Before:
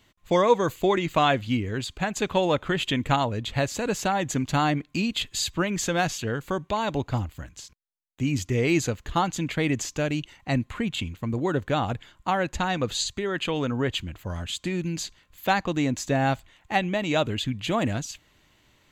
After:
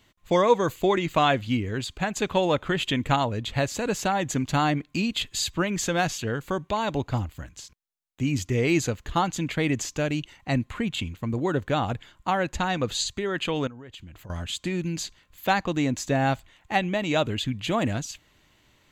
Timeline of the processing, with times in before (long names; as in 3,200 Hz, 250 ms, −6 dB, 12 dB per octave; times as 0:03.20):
0:13.67–0:14.30: downward compressor 10 to 1, threshold −39 dBFS